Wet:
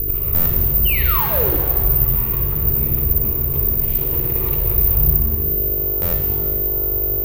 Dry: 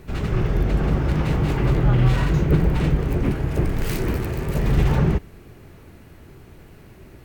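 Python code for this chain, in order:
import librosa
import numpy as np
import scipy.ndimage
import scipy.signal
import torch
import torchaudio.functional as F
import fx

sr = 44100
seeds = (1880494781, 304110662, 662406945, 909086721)

p1 = fx.spec_dropout(x, sr, seeds[0], share_pct=22)
p2 = fx.dmg_buzz(p1, sr, base_hz=50.0, harmonics=9, level_db=-32.0, tilt_db=-3, odd_only=False)
p3 = fx.low_shelf(p2, sr, hz=150.0, db=11.0)
p4 = p3 + fx.room_flutter(p3, sr, wall_m=10.7, rt60_s=0.71, dry=0)
p5 = fx.spec_paint(p4, sr, seeds[1], shape='fall', start_s=0.85, length_s=0.72, low_hz=280.0, high_hz=3100.0, level_db=-14.0)
p6 = fx.peak_eq(p5, sr, hz=670.0, db=4.5, octaves=0.77)
p7 = fx.fixed_phaser(p6, sr, hz=1100.0, stages=8)
p8 = fx.over_compress(p7, sr, threshold_db=-22.0, ratio=-0.5)
p9 = p7 + F.gain(torch.from_numpy(p8), 2.5).numpy()
p10 = (np.kron(p9[::3], np.eye(3)[0]) * 3)[:len(p9)]
p11 = fx.buffer_glitch(p10, sr, at_s=(0.34, 6.01), block=512, repeats=9)
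p12 = fx.rev_shimmer(p11, sr, seeds[2], rt60_s=1.6, semitones=7, shimmer_db=-8, drr_db=1.5)
y = F.gain(torch.from_numpy(p12), -12.5).numpy()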